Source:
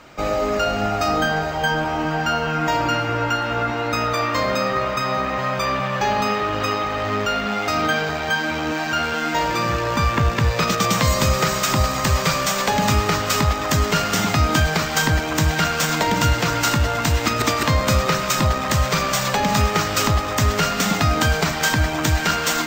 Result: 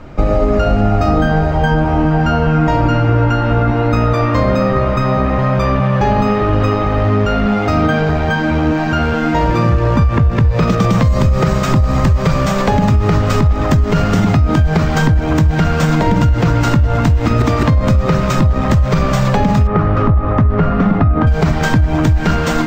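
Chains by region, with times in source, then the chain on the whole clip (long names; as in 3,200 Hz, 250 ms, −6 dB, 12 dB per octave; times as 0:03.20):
0:19.67–0:21.27: low-pass filter 1,700 Hz + parametric band 1,200 Hz +5 dB 0.22 octaves
whole clip: spectral tilt −4 dB per octave; brickwall limiter −5.5 dBFS; downward compressor, threshold −13 dBFS; level +5 dB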